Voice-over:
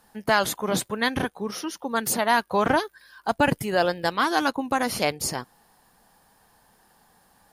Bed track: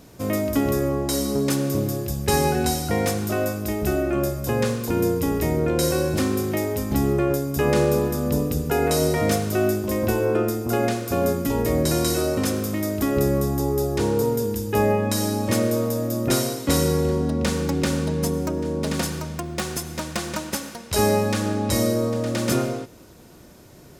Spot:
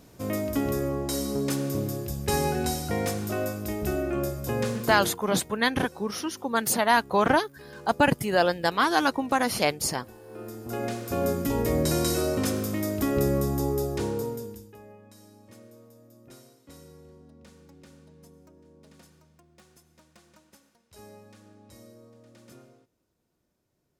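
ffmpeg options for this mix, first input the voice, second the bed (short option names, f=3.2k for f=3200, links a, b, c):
-filter_complex "[0:a]adelay=4600,volume=0dB[a];[1:a]volume=18dB,afade=t=out:st=4.86:d=0.34:silence=0.0841395,afade=t=in:st=10.27:d=1.14:silence=0.0668344,afade=t=out:st=13.65:d=1.12:silence=0.0501187[b];[a][b]amix=inputs=2:normalize=0"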